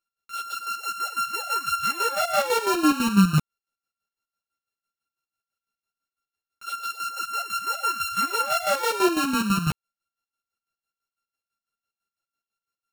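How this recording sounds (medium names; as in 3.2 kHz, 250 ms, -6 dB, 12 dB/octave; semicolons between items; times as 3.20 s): a buzz of ramps at a fixed pitch in blocks of 32 samples; chopped level 6 Hz, depth 65%, duty 45%; a shimmering, thickened sound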